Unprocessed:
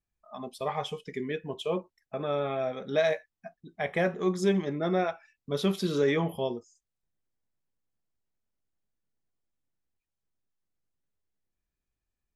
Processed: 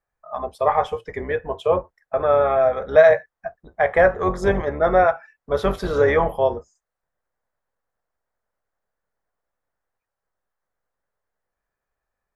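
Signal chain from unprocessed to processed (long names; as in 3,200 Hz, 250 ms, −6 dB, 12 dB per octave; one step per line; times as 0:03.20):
sub-octave generator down 2 octaves, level +2 dB
flat-topped bell 930 Hz +15.5 dB 2.4 octaves
level −1.5 dB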